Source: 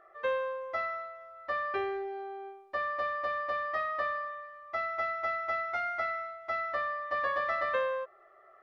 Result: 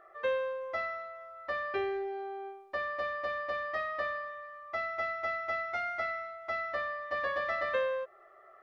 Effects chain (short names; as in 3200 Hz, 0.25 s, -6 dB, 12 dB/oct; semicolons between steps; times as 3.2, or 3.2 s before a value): dynamic EQ 1100 Hz, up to -6 dB, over -45 dBFS, Q 1.4; gain +1.5 dB